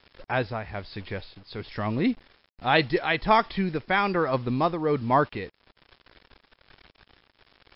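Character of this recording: a quantiser's noise floor 8-bit, dither none; tremolo triangle 1.2 Hz, depth 50%; MP3

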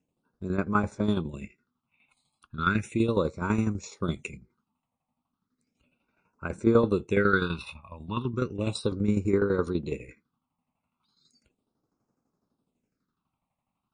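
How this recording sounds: phasing stages 6, 0.35 Hz, lowest notch 390–3300 Hz; tremolo saw down 12 Hz, depth 70%; MP3

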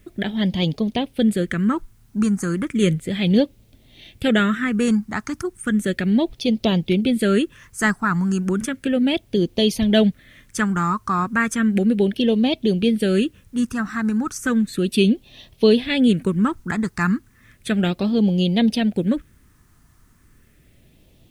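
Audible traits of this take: phasing stages 4, 0.34 Hz, lowest notch 550–1400 Hz; a quantiser's noise floor 12-bit, dither triangular

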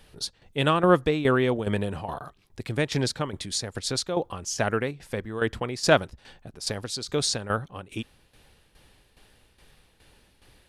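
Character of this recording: tremolo saw down 2.4 Hz, depth 70%

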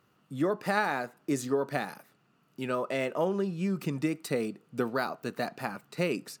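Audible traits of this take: noise floor -69 dBFS; spectral tilt -5.0 dB/oct

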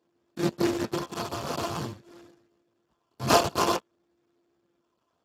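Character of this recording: a buzz of ramps at a fixed pitch in blocks of 128 samples; phasing stages 6, 0.52 Hz, lowest notch 360–1200 Hz; aliases and images of a low sample rate 2000 Hz, jitter 20%; Speex

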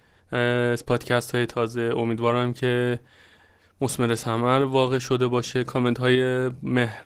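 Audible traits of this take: tremolo saw up 0.65 Hz, depth 40%; Opus

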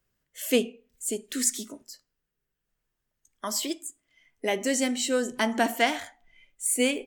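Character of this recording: noise floor -83 dBFS; spectral tilt -2.5 dB/oct

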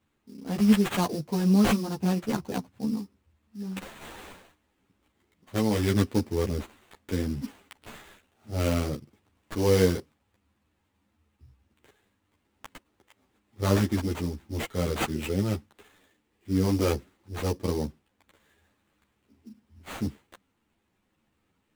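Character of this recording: aliases and images of a low sample rate 5300 Hz, jitter 20%; a shimmering, thickened sound

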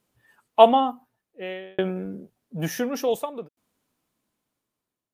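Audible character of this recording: tremolo saw down 0.56 Hz, depth 100%

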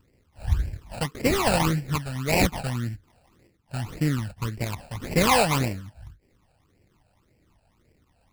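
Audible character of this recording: aliases and images of a low sample rate 1600 Hz, jitter 20%; phasing stages 12, 1.8 Hz, lowest notch 340–1200 Hz

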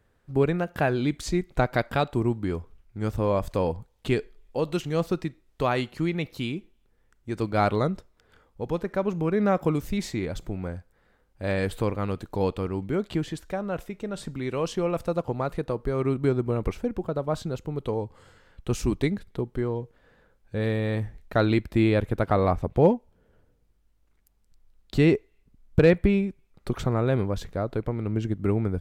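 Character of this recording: noise floor -65 dBFS; spectral tilt -5.5 dB/oct

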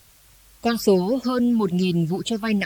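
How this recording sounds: phasing stages 6, 3.6 Hz, lowest notch 500–1600 Hz; a quantiser's noise floor 10-bit, dither triangular; AAC

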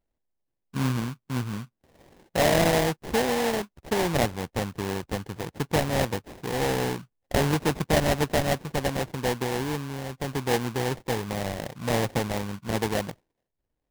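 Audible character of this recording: aliases and images of a low sample rate 1300 Hz, jitter 20%

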